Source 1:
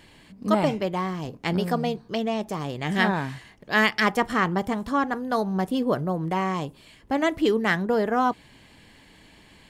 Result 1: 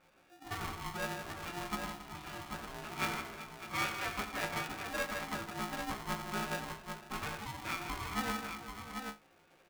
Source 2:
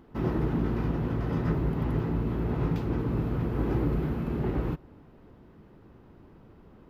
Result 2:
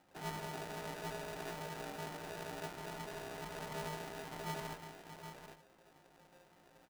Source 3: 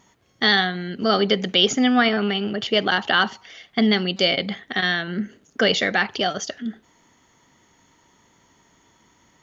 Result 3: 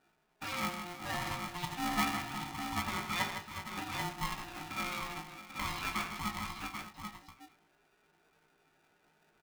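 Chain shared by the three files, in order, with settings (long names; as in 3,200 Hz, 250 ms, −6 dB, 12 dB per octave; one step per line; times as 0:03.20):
running median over 15 samples
dynamic equaliser 190 Hz, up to −6 dB, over −36 dBFS, Q 1.4
in parallel at −1.5 dB: downward compressor, threshold −34 dBFS
on the sum: tilt shelving filter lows −5.5 dB, about 1,400 Hz
resonators tuned to a chord B2 fifth, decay 0.21 s
spectral peaks only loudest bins 64
low-pass filter 3,500 Hz
mains-hum notches 50/100/150/200 Hz
on a send: multi-tap delay 86/158/367/386/603/788 ms −10.5/−8.5/−19/−16.5/−14.5/−6.5 dB
on the sum: ring modulator with a square carrier 530 Hz
level −2.5 dB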